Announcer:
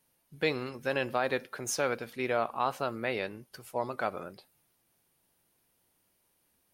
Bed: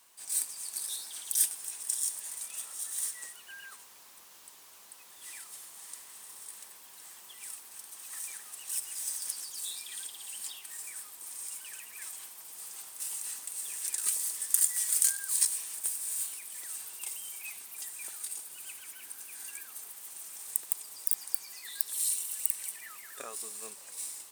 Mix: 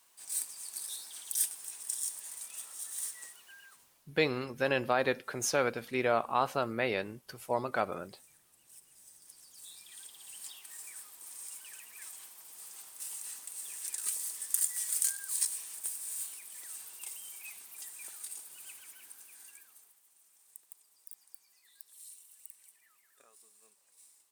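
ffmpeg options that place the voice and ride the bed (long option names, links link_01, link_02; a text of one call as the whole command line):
ffmpeg -i stem1.wav -i stem2.wav -filter_complex "[0:a]adelay=3750,volume=1dB[link_01];[1:a]volume=13dB,afade=type=out:start_time=3.24:duration=0.89:silence=0.133352,afade=type=in:start_time=9.22:duration=1.44:silence=0.141254,afade=type=out:start_time=18.71:duration=1.31:silence=0.149624[link_02];[link_01][link_02]amix=inputs=2:normalize=0" out.wav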